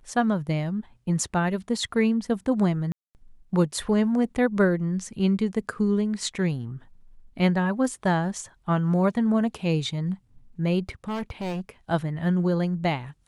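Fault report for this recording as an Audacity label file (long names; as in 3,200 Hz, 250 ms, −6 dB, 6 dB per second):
2.920000	3.150000	drop-out 229 ms
10.800000	11.690000	clipping −27 dBFS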